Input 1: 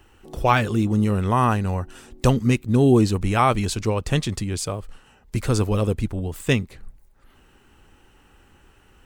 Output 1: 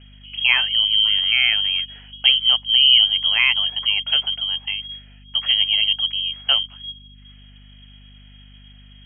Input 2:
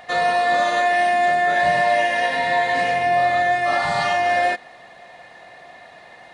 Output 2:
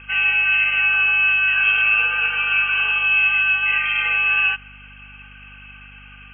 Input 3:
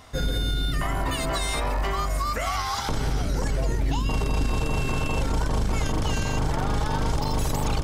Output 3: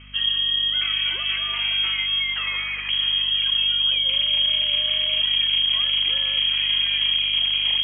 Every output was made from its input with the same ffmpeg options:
-af "lowpass=f=2.8k:t=q:w=0.5098,lowpass=f=2.8k:t=q:w=0.6013,lowpass=f=2.8k:t=q:w=0.9,lowpass=f=2.8k:t=q:w=2.563,afreqshift=-3300,aemphasis=mode=production:type=riaa,aeval=exprs='val(0)+0.00794*(sin(2*PI*50*n/s)+sin(2*PI*2*50*n/s)/2+sin(2*PI*3*50*n/s)/3+sin(2*PI*4*50*n/s)/4+sin(2*PI*5*50*n/s)/5)':c=same,volume=-3dB"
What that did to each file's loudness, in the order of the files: +5.5, +3.0, +8.0 LU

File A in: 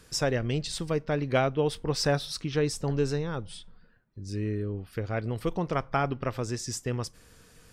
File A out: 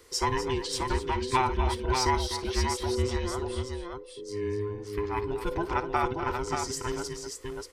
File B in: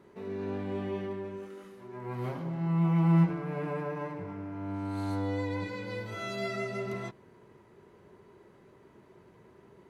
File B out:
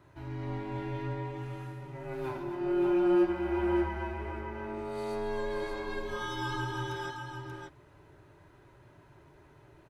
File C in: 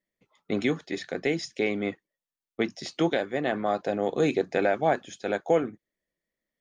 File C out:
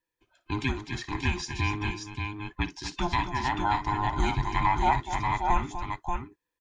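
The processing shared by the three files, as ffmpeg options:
-filter_complex "[0:a]afftfilt=real='real(if(between(b,1,1008),(2*floor((b-1)/24)+1)*24-b,b),0)':imag='imag(if(between(b,1,1008),(2*floor((b-1)/24)+1)*24-b,b),0)*if(between(b,1,1008),-1,1)':win_size=2048:overlap=0.75,equalizer=f=200:t=o:w=0.61:g=-12,asplit=2[a][b];[b]aecho=0:1:56|248|583:0.168|0.299|0.562[c];[a][c]amix=inputs=2:normalize=0"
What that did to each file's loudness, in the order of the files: 0.0, -0.5, -1.5 LU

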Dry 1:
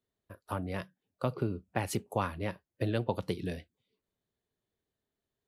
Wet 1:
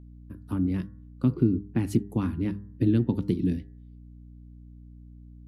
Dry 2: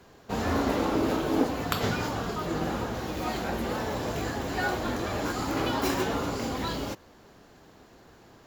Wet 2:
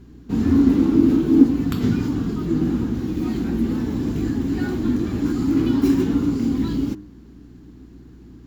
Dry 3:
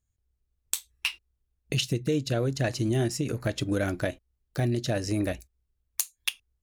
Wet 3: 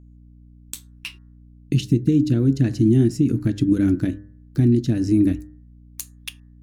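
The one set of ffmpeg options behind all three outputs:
-af "lowshelf=f=410:t=q:w=3:g=12.5,bandreject=f=100.9:t=h:w=4,bandreject=f=201.8:t=h:w=4,bandreject=f=302.7:t=h:w=4,bandreject=f=403.6:t=h:w=4,bandreject=f=504.5:t=h:w=4,bandreject=f=605.4:t=h:w=4,bandreject=f=706.3:t=h:w=4,bandreject=f=807.2:t=h:w=4,bandreject=f=908.1:t=h:w=4,bandreject=f=1.009k:t=h:w=4,bandreject=f=1.1099k:t=h:w=4,bandreject=f=1.2108k:t=h:w=4,bandreject=f=1.3117k:t=h:w=4,bandreject=f=1.4126k:t=h:w=4,bandreject=f=1.5135k:t=h:w=4,bandreject=f=1.6144k:t=h:w=4,bandreject=f=1.7153k:t=h:w=4,bandreject=f=1.8162k:t=h:w=4,bandreject=f=1.9171k:t=h:w=4,aeval=exprs='val(0)+0.00891*(sin(2*PI*60*n/s)+sin(2*PI*2*60*n/s)/2+sin(2*PI*3*60*n/s)/3+sin(2*PI*4*60*n/s)/4+sin(2*PI*5*60*n/s)/5)':c=same,volume=-4.5dB"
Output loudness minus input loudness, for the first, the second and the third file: +8.0, +9.5, +9.5 LU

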